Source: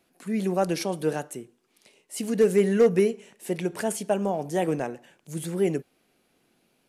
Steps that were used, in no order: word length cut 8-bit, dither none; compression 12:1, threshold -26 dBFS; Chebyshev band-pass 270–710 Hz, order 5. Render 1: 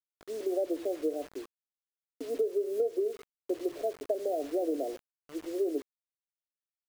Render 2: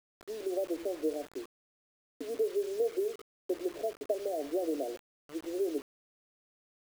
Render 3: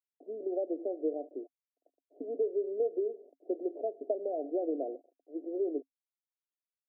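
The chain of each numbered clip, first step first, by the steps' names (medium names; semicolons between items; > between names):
Chebyshev band-pass > word length cut > compression; compression > Chebyshev band-pass > word length cut; word length cut > compression > Chebyshev band-pass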